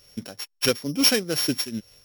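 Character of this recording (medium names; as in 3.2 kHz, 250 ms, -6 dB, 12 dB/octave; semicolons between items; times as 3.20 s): a buzz of ramps at a fixed pitch in blocks of 8 samples; tremolo triangle 2.2 Hz, depth 85%; AAC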